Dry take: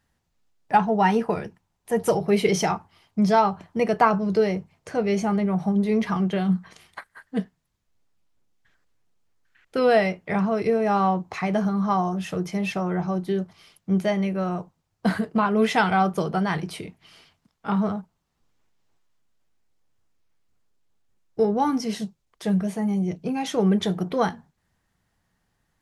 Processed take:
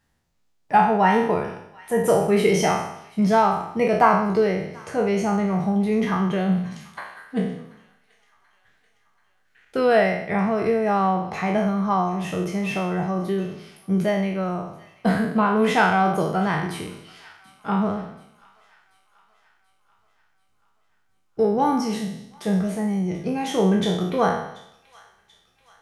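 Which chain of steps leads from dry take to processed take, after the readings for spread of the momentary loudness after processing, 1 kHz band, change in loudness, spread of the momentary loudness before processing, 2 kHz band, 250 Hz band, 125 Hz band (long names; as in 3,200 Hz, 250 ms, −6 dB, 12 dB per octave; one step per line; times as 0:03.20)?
13 LU, +2.5 dB, +1.5 dB, 12 LU, +3.0 dB, +1.0 dB, +1.5 dB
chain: peak hold with a decay on every bin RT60 0.74 s
dynamic equaliser 4,800 Hz, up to −5 dB, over −46 dBFS, Q 1.2
on a send: delay with a high-pass on its return 734 ms, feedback 55%, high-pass 1,500 Hz, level −20 dB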